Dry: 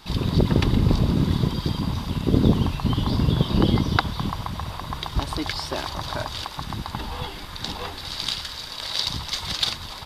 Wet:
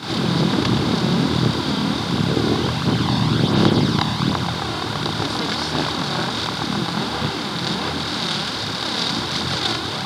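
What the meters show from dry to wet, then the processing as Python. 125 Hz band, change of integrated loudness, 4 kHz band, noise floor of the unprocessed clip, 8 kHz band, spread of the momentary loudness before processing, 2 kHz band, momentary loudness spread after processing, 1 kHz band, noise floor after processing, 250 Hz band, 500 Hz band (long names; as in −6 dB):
+1.5 dB, +4.0 dB, +6.5 dB, −37 dBFS, +5.5 dB, 11 LU, +8.0 dB, 5 LU, +7.0 dB, −26 dBFS, +4.5 dB, +5.5 dB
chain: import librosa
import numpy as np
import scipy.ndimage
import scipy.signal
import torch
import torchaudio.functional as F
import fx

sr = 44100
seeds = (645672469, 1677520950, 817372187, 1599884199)

y = fx.bin_compress(x, sr, power=0.4)
y = scipy.signal.sosfilt(scipy.signal.butter(2, 11000.0, 'lowpass', fs=sr, output='sos'), y)
y = fx.quant_dither(y, sr, seeds[0], bits=10, dither='triangular')
y = fx.chorus_voices(y, sr, voices=2, hz=0.69, base_ms=26, depth_ms=3.1, mix_pct=65)
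y = scipy.signal.sosfilt(scipy.signal.butter(4, 110.0, 'highpass', fs=sr, output='sos'), y)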